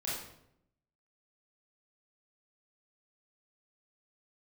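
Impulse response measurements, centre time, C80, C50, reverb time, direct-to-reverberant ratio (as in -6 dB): 61 ms, 4.5 dB, 0.5 dB, 0.75 s, -8.0 dB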